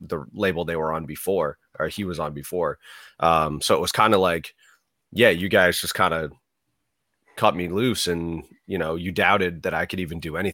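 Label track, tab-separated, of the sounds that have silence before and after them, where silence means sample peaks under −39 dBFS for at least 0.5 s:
5.130000	6.320000	sound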